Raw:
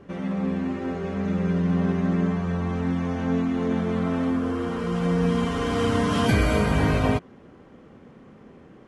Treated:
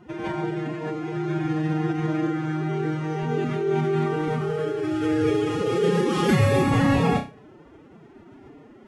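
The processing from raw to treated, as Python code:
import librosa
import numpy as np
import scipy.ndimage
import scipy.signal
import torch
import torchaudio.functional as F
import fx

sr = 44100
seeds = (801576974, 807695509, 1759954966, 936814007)

y = fx.room_flutter(x, sr, wall_m=5.5, rt60_s=0.32)
y = fx.pitch_keep_formants(y, sr, semitones=10.0)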